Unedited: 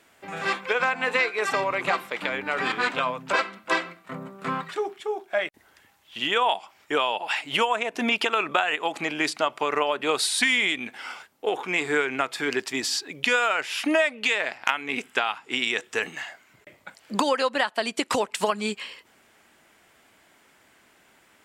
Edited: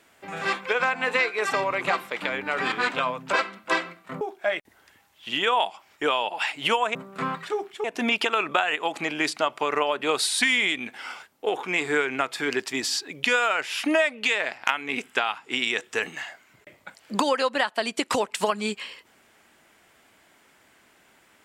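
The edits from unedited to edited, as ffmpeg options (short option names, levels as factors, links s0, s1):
-filter_complex "[0:a]asplit=4[s0][s1][s2][s3];[s0]atrim=end=4.212[s4];[s1]atrim=start=5.098:end=7.842[s5];[s2]atrim=start=4.208:end=5.102[s6];[s3]atrim=start=7.838[s7];[s4][s5]acrossfade=d=0.004:c1=hsin:c2=hsin[s8];[s8][s6]acrossfade=d=0.004:c1=hsin:c2=hsin[s9];[s9][s7]acrossfade=d=0.004:c1=hsin:c2=hsin"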